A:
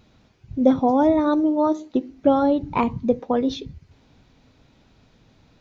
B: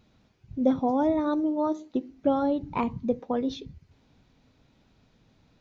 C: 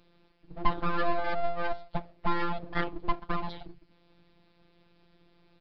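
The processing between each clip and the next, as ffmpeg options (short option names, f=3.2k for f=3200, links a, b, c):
-af "equalizer=f=190:t=o:w=0.77:g=2,volume=-7dB"
-af "afftfilt=real='hypot(re,im)*cos(PI*b)':imag='0':win_size=1024:overlap=0.75,aeval=exprs='abs(val(0))':c=same,aresample=11025,aresample=44100,volume=4.5dB"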